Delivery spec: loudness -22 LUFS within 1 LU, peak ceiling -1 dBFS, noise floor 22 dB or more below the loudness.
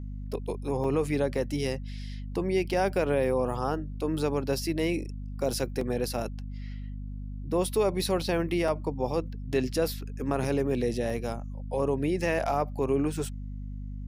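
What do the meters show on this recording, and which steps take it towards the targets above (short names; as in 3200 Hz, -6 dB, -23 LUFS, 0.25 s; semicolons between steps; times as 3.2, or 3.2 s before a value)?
dropouts 4; longest dropout 3.2 ms; hum 50 Hz; harmonics up to 250 Hz; hum level -34 dBFS; loudness -29.5 LUFS; peak -13.5 dBFS; loudness target -22.0 LUFS
-> interpolate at 0.84/5.81/8.68/11.1, 3.2 ms; notches 50/100/150/200/250 Hz; gain +7.5 dB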